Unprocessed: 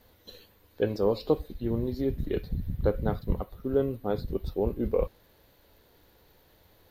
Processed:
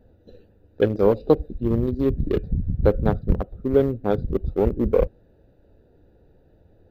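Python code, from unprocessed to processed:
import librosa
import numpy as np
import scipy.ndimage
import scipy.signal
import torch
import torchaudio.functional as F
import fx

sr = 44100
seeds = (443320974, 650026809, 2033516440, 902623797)

y = fx.wiener(x, sr, points=41)
y = y * 10.0 ** (8.0 / 20.0)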